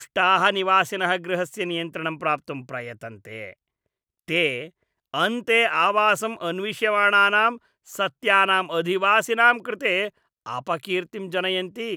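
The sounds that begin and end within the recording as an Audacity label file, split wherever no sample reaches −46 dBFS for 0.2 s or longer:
4.280000	4.690000	sound
5.140000	7.580000	sound
7.870000	10.100000	sound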